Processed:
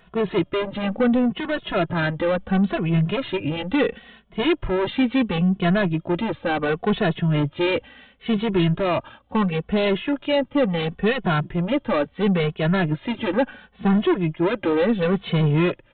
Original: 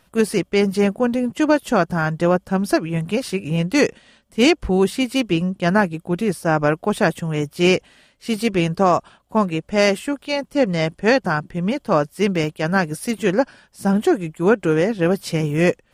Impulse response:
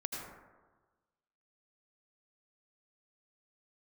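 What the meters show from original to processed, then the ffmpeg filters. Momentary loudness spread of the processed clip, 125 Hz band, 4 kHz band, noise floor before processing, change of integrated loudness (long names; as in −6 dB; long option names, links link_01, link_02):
5 LU, 0.0 dB, −2.5 dB, −61 dBFS, −2.5 dB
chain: -filter_complex "[0:a]alimiter=limit=-9dB:level=0:latency=1:release=66,aresample=8000,asoftclip=type=tanh:threshold=-22dB,aresample=44100,asplit=2[link_01][link_02];[link_02]adelay=2.3,afreqshift=-0.72[link_03];[link_01][link_03]amix=inputs=2:normalize=1,volume=8dB"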